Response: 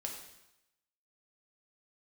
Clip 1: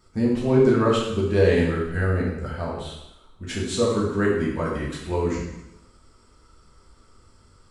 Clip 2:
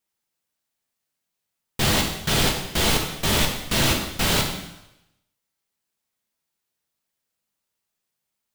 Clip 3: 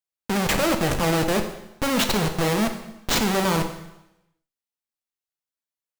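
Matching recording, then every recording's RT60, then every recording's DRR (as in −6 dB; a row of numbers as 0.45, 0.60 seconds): 2; 0.90, 0.90, 0.90 seconds; −5.5, 0.0, 5.0 decibels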